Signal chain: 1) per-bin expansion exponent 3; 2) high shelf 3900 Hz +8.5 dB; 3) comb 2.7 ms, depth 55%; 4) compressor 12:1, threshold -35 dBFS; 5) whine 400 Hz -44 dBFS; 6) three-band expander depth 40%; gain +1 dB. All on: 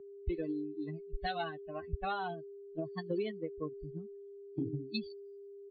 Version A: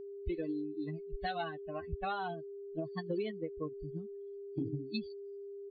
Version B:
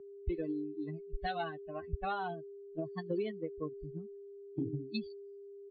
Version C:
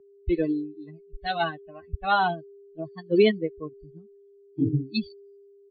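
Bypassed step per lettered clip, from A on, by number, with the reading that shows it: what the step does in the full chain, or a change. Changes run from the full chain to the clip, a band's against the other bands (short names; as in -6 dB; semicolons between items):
6, 4 kHz band -2.0 dB; 2, 4 kHz band -3.5 dB; 4, mean gain reduction 7.5 dB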